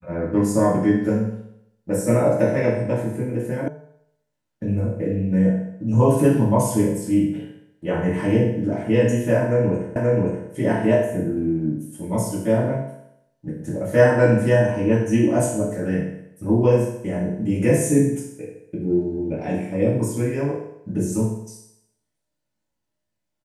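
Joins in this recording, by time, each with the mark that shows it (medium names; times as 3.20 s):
3.68 s: sound stops dead
9.96 s: repeat of the last 0.53 s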